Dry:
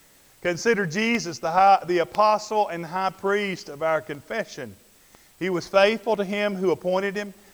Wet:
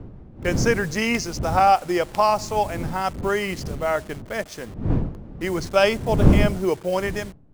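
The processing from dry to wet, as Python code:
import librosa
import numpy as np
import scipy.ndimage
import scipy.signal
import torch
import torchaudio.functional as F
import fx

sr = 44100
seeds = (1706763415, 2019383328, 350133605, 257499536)

y = fx.delta_hold(x, sr, step_db=-39.5)
y = fx.dmg_wind(y, sr, seeds[0], corner_hz=180.0, level_db=-26.0)
y = fx.dynamic_eq(y, sr, hz=8600.0, q=1.0, threshold_db=-50.0, ratio=4.0, max_db=6)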